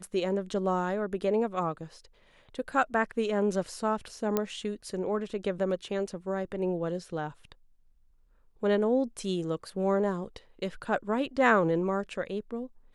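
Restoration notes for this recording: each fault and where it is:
0:04.37: click −13 dBFS

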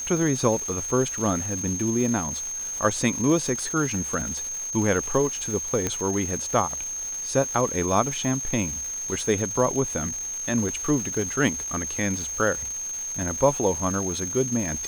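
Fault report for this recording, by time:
surface crackle 590 per second −32 dBFS
whistle 6,400 Hz −29 dBFS
0:05.87: click −10 dBFS

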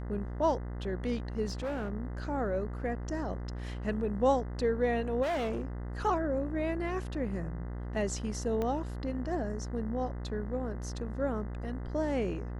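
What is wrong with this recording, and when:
mains buzz 60 Hz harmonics 34 −38 dBFS
0:01.48–0:01.91: clipping −31 dBFS
0:05.22–0:05.62: clipping −29 dBFS
0:08.62: click −21 dBFS

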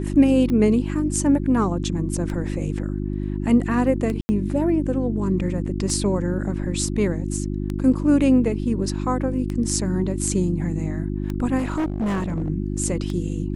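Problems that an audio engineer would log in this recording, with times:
mains hum 50 Hz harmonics 7 −26 dBFS
scratch tick 33 1/3 rpm −16 dBFS
0:04.21–0:04.29: drop-out 80 ms
0:11.58–0:12.50: clipping −20 dBFS

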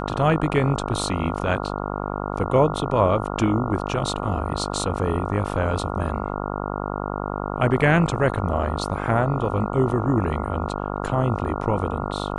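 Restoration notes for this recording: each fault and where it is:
mains buzz 50 Hz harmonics 28 −28 dBFS

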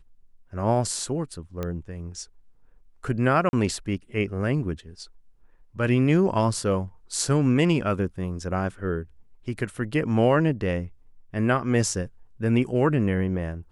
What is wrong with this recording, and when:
0:01.63: click −17 dBFS
0:03.49–0:03.53: drop-out 41 ms

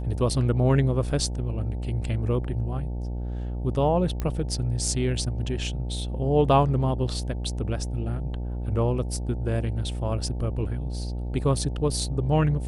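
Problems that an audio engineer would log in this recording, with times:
mains buzz 60 Hz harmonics 15 −30 dBFS
0:04.20: click −16 dBFS

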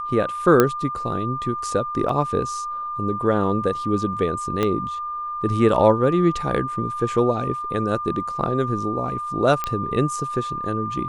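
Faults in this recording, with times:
whistle 1,200 Hz −26 dBFS
0:00.60: click −2 dBFS
0:02.09: drop-out 3.2 ms
0:04.63: click −9 dBFS
0:09.64: click −10 dBFS

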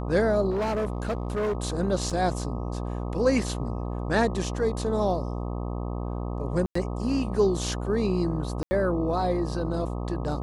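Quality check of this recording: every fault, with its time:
mains buzz 60 Hz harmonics 21 −31 dBFS
0:00.50–0:01.57: clipping −23.5 dBFS
0:02.10: drop-out 4.5 ms
0:06.66–0:06.75: drop-out 94 ms
0:08.63–0:08.71: drop-out 80 ms

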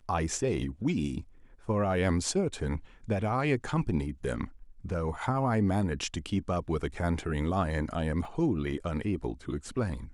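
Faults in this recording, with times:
0:08.25: drop-out 2.7 ms

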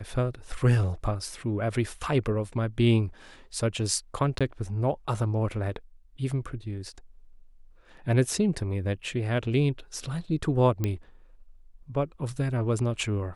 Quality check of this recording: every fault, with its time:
0:04.39–0:04.41: drop-out 16 ms
0:10.84: click −14 dBFS

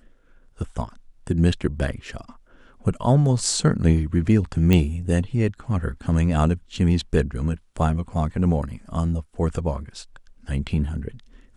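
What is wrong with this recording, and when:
0:04.73: click −7 dBFS

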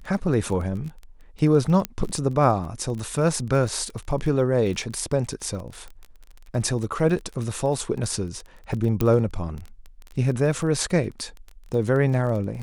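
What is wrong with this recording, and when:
surface crackle 21 per second −30 dBFS
0:01.85: click −10 dBFS
0:09.01: click −9 dBFS

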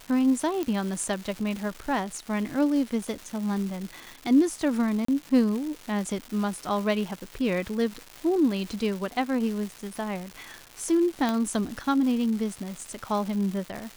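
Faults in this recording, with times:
surface crackle 490 per second −33 dBFS
0:00.63: click −16 dBFS
0:05.05–0:05.08: drop-out 34 ms
0:11.29: click −13 dBFS

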